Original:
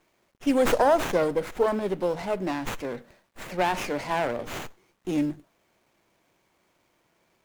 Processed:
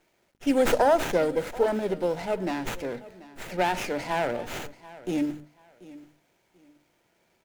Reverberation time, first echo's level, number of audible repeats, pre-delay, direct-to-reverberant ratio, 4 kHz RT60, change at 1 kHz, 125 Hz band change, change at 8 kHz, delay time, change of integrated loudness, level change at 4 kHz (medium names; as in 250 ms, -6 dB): no reverb, -19.0 dB, 2, no reverb, no reverb, no reverb, -1.0 dB, -1.0 dB, 0.0 dB, 735 ms, -0.5 dB, 0.0 dB